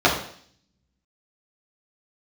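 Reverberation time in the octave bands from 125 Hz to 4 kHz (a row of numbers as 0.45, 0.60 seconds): 0.90, 0.70, 0.60, 0.55, 0.60, 0.70 seconds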